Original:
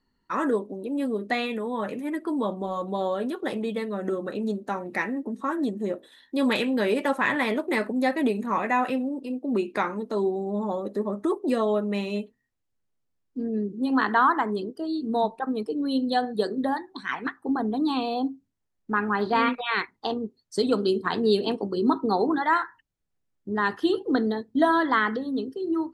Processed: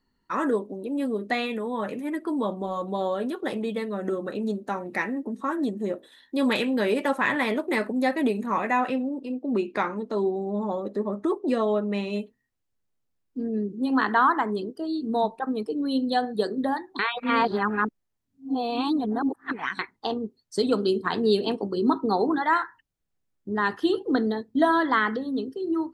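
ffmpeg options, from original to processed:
ffmpeg -i in.wav -filter_complex "[0:a]asettb=1/sr,asplit=3[link_01][link_02][link_03];[link_01]atrim=end=8.794[link_04];[link_02]atrim=start=8.79:end=12.13,asetpts=PTS-STARTPTS,afade=type=in:duration=0.004:curve=qsin,afade=type=out:start_time=3.336:duration=0.004:curve=qsin,adynamicsmooth=sensitivity=3:basefreq=7700[link_05];[link_03]atrim=start=12.126[link_06];[link_04][link_05]acrossfade=duration=0.004:curve1=hsin:curve2=qsin[link_07];[link_07][link_06]acrossfade=duration=0.004:curve1=qsin:curve2=hsin,asplit=3[link_08][link_09][link_10];[link_08]atrim=end=16.992[link_11];[link_09]atrim=start=16.988:end=19.792,asetpts=PTS-STARTPTS,areverse[link_12];[link_10]atrim=start=19.788[link_13];[link_11][link_12]acrossfade=duration=0.004:curve1=hsin:curve2=hsin[link_14];[link_14][link_13]acrossfade=duration=0.004:curve1=hsin:curve2=hsin" out.wav

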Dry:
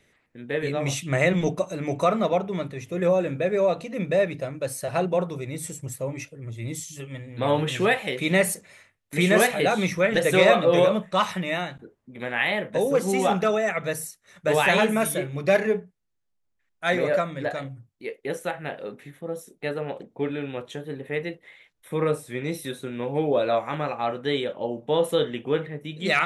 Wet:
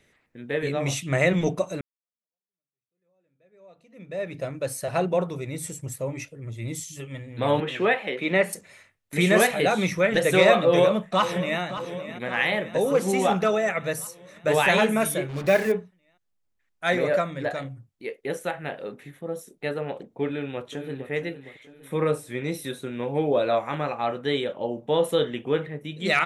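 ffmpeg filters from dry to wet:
ffmpeg -i in.wav -filter_complex "[0:a]asettb=1/sr,asplit=3[link_01][link_02][link_03];[link_01]atrim=end=7.604[link_04];[link_02]atrim=start=7.6:end=8.53,asetpts=PTS-STARTPTS,afade=type=in:duration=0.004:curve=qsin,afade=type=out:start_time=0.926:duration=0.004:curve=qsin,acrossover=split=180 3600:gain=0.0708 1 0.141[link_05][link_06][link_07];[link_05][link_06][link_07]amix=inputs=3:normalize=0[link_08];[link_03]atrim=start=8.526[link_09];[link_04][link_08]acrossfade=duration=0.004:curve1=hsin:curve2=qsin[link_10];[link_10][link_09]acrossfade=duration=0.004:curve1=qsin:curve2=hsin,asplit=2[link_11][link_12];[link_12]afade=type=in:start_time=10.55:duration=0.01,afade=type=out:start_time=11.61:duration=0.01,aecho=0:1:570|1140|1710|2280|2850|3420|3990|4560:0.237137|0.154139|0.100191|0.0651239|0.0423305|0.0275148|0.0178846|0.011625[link_13];[link_11][link_13]amix=inputs=2:normalize=0,asettb=1/sr,asplit=3[link_14][link_15][link_16];[link_14]atrim=end=15.294[link_17];[link_15]atrim=start=15.29:end=15.72,asetpts=PTS-STARTPTS,afade=type=in:duration=0.004:curve=qsin,afade=type=out:start_time=0.426:duration=0.004:curve=qsin,acrusher=bits=5:mix=0:aa=0.5[link_18];[link_16]atrim=start=15.716[link_19];[link_17][link_18]acrossfade=duration=0.004:curve1=hsin:curve2=qsin[link_20];[link_20][link_19]acrossfade=duration=0.004:curve1=qsin:curve2=hsin,asplit=2[link_21][link_22];[link_22]afade=type=in:start_time=20.26:duration=0.01,afade=type=out:start_time=21.1:duration=0.01,aecho=0:1:460|920|1380|1840|2300:0.251189|0.125594|0.0627972|0.0313986|0.0156993[link_23];[link_21][link_23]amix=inputs=2:normalize=0,asplit=2[link_24][link_25];[link_24]atrim=end=1.81,asetpts=PTS-STARTPTS,afade=type=out:start_time=1.806:duration=0.004:curve=hsin[link_26];[link_25]atrim=start=1.81,asetpts=PTS-STARTPTS,afade=type=in:duration=2.63:curve=exp[link_27];[link_26][link_27]concat=n=2:v=0:a=1" out.wav

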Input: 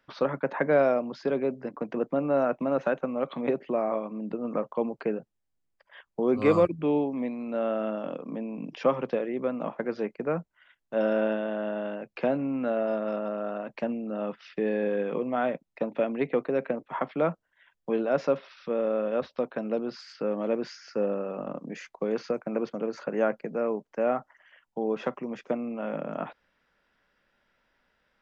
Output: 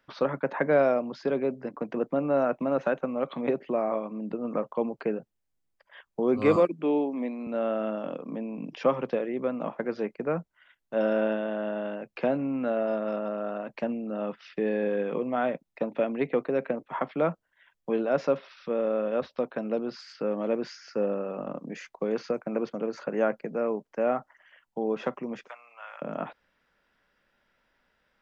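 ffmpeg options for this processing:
ffmpeg -i in.wav -filter_complex "[0:a]asettb=1/sr,asplit=3[link_01][link_02][link_03];[link_01]atrim=end=6.564[link_04];[link_02]atrim=start=6.56:end=7.47,asetpts=PTS-STARTPTS,afade=type=in:duration=0.004:curve=qsin,afade=type=out:start_time=0.906:duration=0.004:curve=qsin,highpass=frequency=200:width=0.5412,highpass=frequency=200:width=1.3066[link_05];[link_03]atrim=start=7.466[link_06];[link_04][link_05]acrossfade=duration=0.004:curve1=hsin:curve2=qsin[link_07];[link_07][link_06]acrossfade=duration=0.004:curve1=qsin:curve2=hsin,asettb=1/sr,asplit=3[link_08][link_09][link_10];[link_08]atrim=end=25.484[link_11];[link_09]atrim=start=25.48:end=26.02,asetpts=PTS-STARTPTS,afade=type=in:duration=0.004:curve=qsin,afade=type=out:start_time=0.536:duration=0.004:curve=qsin,highpass=frequency=1000:width=0.5412,highpass=frequency=1000:width=1.3066[link_12];[link_10]atrim=start=26.016[link_13];[link_11][link_12]acrossfade=duration=0.004:curve1=hsin:curve2=qsin[link_14];[link_14][link_13]acrossfade=duration=0.004:curve1=qsin:curve2=hsin" out.wav

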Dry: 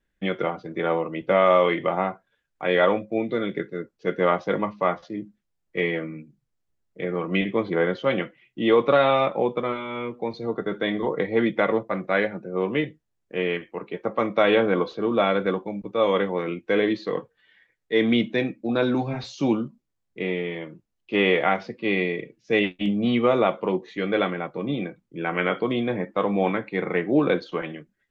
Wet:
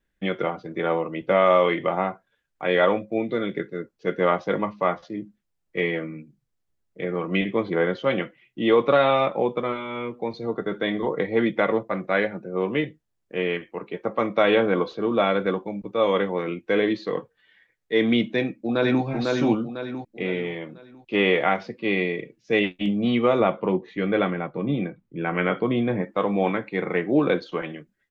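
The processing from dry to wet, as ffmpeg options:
ffmpeg -i in.wav -filter_complex "[0:a]asplit=2[link_01][link_02];[link_02]afade=type=in:start_time=18.33:duration=0.01,afade=type=out:start_time=19.04:duration=0.01,aecho=0:1:500|1000|1500|2000|2500:0.794328|0.317731|0.127093|0.050837|0.0203348[link_03];[link_01][link_03]amix=inputs=2:normalize=0,asettb=1/sr,asplit=3[link_04][link_05][link_06];[link_04]atrim=end=23.404[link_07];[link_05]atrim=start=23.4:end=26.02,asetpts=PTS-STARTPTS,afade=type=in:duration=0.004:curve=qsin,afade=type=out:start_time=2.616:duration=0.004:curve=qsin,bass=frequency=250:gain=5,treble=frequency=4000:gain=-11[link_08];[link_06]atrim=start=26.016[link_09];[link_07][link_08]acrossfade=duration=0.004:curve1=hsin:curve2=qsin[link_10];[link_10][link_09]acrossfade=duration=0.004:curve1=qsin:curve2=hsin" out.wav

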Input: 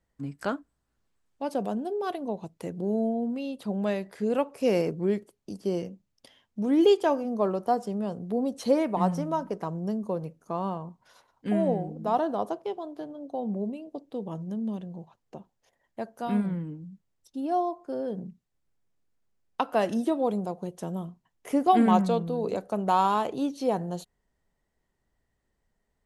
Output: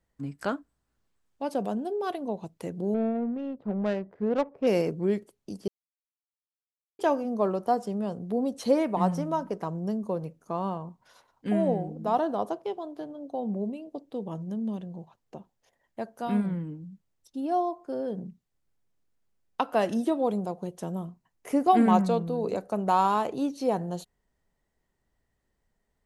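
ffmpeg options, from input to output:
ffmpeg -i in.wav -filter_complex "[0:a]asettb=1/sr,asplit=3[link_01][link_02][link_03];[link_01]atrim=end=2.944[link_04];[link_02]atrim=start=2.94:end=4.67,asetpts=PTS-STARTPTS,afade=type=in:duration=0.004:curve=qsin,afade=type=out:start_time=1.726:duration=0.004:curve=qsin,adynamicsmooth=sensitivity=2:basefreq=640[link_05];[link_03]atrim=start=4.666[link_06];[link_04][link_05]acrossfade=duration=0.004:curve1=hsin:curve2=qsin[link_07];[link_07][link_06]acrossfade=duration=0.004:curve1=qsin:curve2=hsin,asettb=1/sr,asplit=3[link_08][link_09][link_10];[link_08]atrim=end=20.894[link_11];[link_09]atrim=start=20.89:end=23.72,asetpts=PTS-STARTPTS,afade=type=in:duration=0.004:curve=qsin,afade=type=out:start_time=2.826:duration=0.004:curve=qsin,equalizer=frequency=3300:width=5.5:gain=-5.5[link_12];[link_10]atrim=start=23.716[link_13];[link_11][link_12]acrossfade=duration=0.004:curve1=hsin:curve2=qsin[link_14];[link_14][link_13]acrossfade=duration=0.004:curve1=qsin:curve2=hsin,asplit=3[link_15][link_16][link_17];[link_15]atrim=end=5.68,asetpts=PTS-STARTPTS,afade=type=out:start_time=5.676:duration=0.004:curve=hsin[link_18];[link_16]atrim=start=5.68:end=6.99,asetpts=PTS-STARTPTS,volume=0[link_19];[link_17]atrim=start=6.99,asetpts=PTS-STARTPTS,afade=type=in:duration=0.004:curve=hsin[link_20];[link_18][link_19][link_20]concat=n=3:v=0:a=1" out.wav

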